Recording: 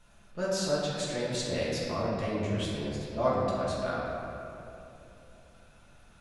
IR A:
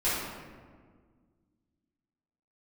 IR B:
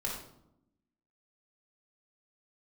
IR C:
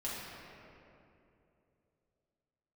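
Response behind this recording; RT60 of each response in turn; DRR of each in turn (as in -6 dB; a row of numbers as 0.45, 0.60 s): C; 1.7, 0.80, 2.8 s; -12.5, -4.0, -8.5 dB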